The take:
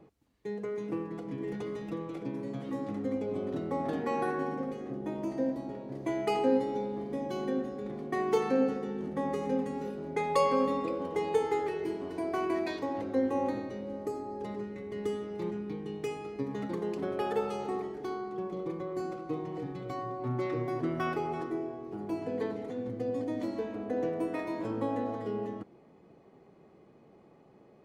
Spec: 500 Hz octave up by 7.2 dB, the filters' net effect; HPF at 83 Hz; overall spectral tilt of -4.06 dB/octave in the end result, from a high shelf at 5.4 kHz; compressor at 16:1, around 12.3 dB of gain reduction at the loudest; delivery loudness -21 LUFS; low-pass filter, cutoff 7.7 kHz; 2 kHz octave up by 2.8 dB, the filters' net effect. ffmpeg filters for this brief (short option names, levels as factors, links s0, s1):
-af "highpass=83,lowpass=7700,equalizer=f=500:t=o:g=8.5,equalizer=f=2000:t=o:g=4,highshelf=f=5400:g=-8,acompressor=threshold=0.0447:ratio=16,volume=3.98"